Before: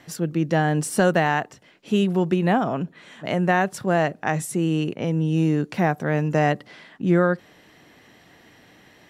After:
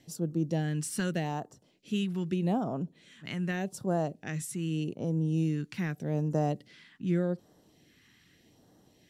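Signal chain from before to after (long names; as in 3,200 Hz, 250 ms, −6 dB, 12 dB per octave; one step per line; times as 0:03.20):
all-pass phaser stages 2, 0.83 Hz, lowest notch 590–2,200 Hz
level −7.5 dB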